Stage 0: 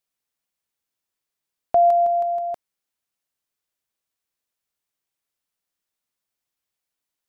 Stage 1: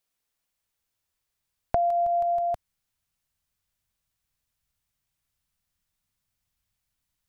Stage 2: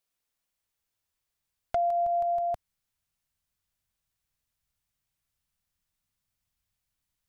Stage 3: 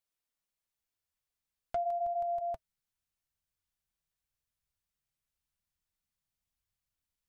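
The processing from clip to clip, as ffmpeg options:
ffmpeg -i in.wav -af "asubboost=boost=10.5:cutoff=120,acompressor=threshold=-24dB:ratio=12,volume=2.5dB" out.wav
ffmpeg -i in.wav -af "asoftclip=type=hard:threshold=-18.5dB,volume=-2.5dB" out.wav
ffmpeg -i in.wav -af "flanger=delay=0.9:depth=5.5:regen=-57:speed=0.88:shape=triangular,volume=-2.5dB" out.wav

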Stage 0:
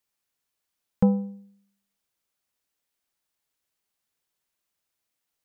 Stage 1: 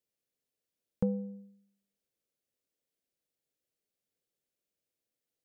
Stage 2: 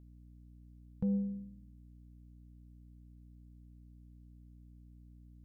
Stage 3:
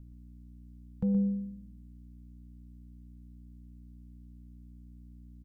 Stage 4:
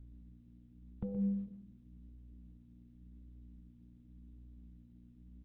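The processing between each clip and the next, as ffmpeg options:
ffmpeg -i in.wav -af "equalizer=frequency=125:width_type=o:width=1:gain=5,equalizer=frequency=250:width_type=o:width=1:gain=5,equalizer=frequency=500:width_type=o:width=1:gain=12,equalizer=frequency=1000:width_type=o:width=1:gain=-11,acompressor=threshold=-25dB:ratio=2,volume=-8.5dB" out.wav
ffmpeg -i in.wav -af "asubboost=boost=9.5:cutoff=220,alimiter=limit=-23.5dB:level=0:latency=1:release=34,aeval=exprs='val(0)+0.00251*(sin(2*PI*60*n/s)+sin(2*PI*2*60*n/s)/2+sin(2*PI*3*60*n/s)/3+sin(2*PI*4*60*n/s)/4+sin(2*PI*5*60*n/s)/5)':channel_layout=same,volume=-2.5dB" out.wav
ffmpeg -i in.wav -filter_complex "[0:a]acrossover=split=300[link_01][link_02];[link_01]acompressor=mode=upward:threshold=-50dB:ratio=2.5[link_03];[link_03][link_02]amix=inputs=2:normalize=0,aecho=1:1:121:0.398,volume=3.5dB" out.wav
ffmpeg -i in.wav -af "flanger=delay=2.5:depth=6.7:regen=-48:speed=0.9:shape=sinusoidal" -ar 48000 -c:a libopus -b:a 8k out.opus

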